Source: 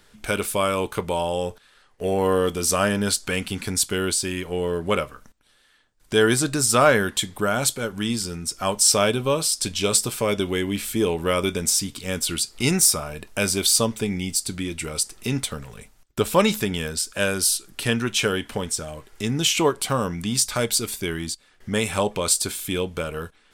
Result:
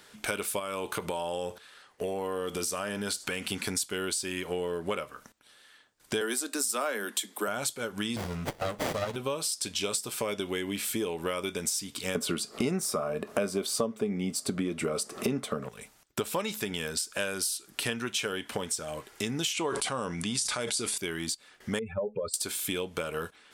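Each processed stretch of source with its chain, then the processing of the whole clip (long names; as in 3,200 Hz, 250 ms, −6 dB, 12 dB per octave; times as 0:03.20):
0:00.59–0:03.52: downward compressor 3 to 1, threshold −27 dBFS + single-tap delay 77 ms −22.5 dB
0:06.21–0:07.48: Butterworth high-pass 200 Hz 96 dB per octave + high-shelf EQ 10,000 Hz +11.5 dB + hard clipping −4 dBFS
0:08.16–0:09.16: comb filter 1.5 ms, depth 83% + windowed peak hold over 33 samples
0:12.15–0:15.69: upward compression, threshold −32 dBFS + hollow resonant body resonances 220/420/590/1,100 Hz, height 18 dB, ringing for 20 ms
0:19.53–0:20.98: bad sample-rate conversion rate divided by 2×, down none, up filtered + level that may fall only so fast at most 27 dB per second
0:21.79–0:22.34: expanding power law on the bin magnitudes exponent 2.8 + head-to-tape spacing loss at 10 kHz 32 dB
whole clip: high-pass filter 280 Hz 6 dB per octave; downward compressor 6 to 1, threshold −32 dBFS; level +3 dB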